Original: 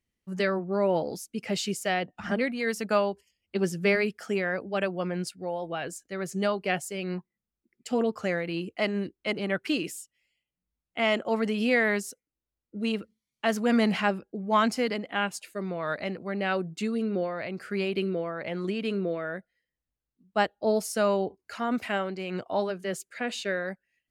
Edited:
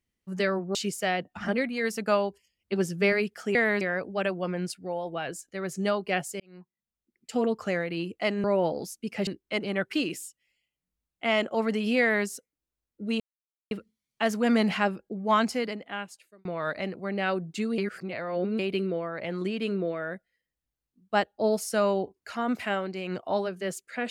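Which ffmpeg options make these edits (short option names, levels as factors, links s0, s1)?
-filter_complex "[0:a]asplit=11[s0][s1][s2][s3][s4][s5][s6][s7][s8][s9][s10];[s0]atrim=end=0.752[s11];[s1]atrim=start=1.578:end=4.382[s12];[s2]atrim=start=11.738:end=12.002[s13];[s3]atrim=start=4.378:end=6.97,asetpts=PTS-STARTPTS,afade=t=out:st=2.588:d=0.004:c=hsin[s14];[s4]atrim=start=6.97:end=9.012,asetpts=PTS-STARTPTS,afade=t=in:d=0.98[s15];[s5]atrim=start=0.748:end=1.582[s16];[s6]atrim=start=9.008:end=12.94,asetpts=PTS-STARTPTS,afade=t=out:st=3.928:d=0.004:c=hsin,apad=pad_dur=0.51[s17];[s7]atrim=start=12.94:end=15.68,asetpts=PTS-STARTPTS,afade=t=in:d=0.004:c=hsin,afade=t=out:st=1.67:d=1.07[s18];[s8]atrim=start=15.68:end=17.012,asetpts=PTS-STARTPTS,afade=t=in:d=0.004:c=hsin[s19];[s9]atrim=start=17.008:end=17.822,asetpts=PTS-STARTPTS,areverse[s20];[s10]atrim=start=17.818[s21];[s11][s12]acrossfade=d=0.004:c1=hsin:c2=hsin[s22];[s22][s13]acrossfade=d=0.004:c1=hsin:c2=hsin[s23];[s14][s15]concat=n=2:v=0:a=1[s24];[s23][s24]acrossfade=d=0.004:c1=hsin:c2=hsin[s25];[s25][s16]acrossfade=d=0.004:c1=hsin:c2=hsin[s26];[s17][s18][s19]concat=n=3:v=0:a=1[s27];[s26][s27]acrossfade=d=0.004:c1=hsin:c2=hsin[s28];[s28][s20]acrossfade=d=0.004:c1=hsin:c2=hsin[s29];[s29][s21]acrossfade=d=0.004:c1=hsin:c2=hsin"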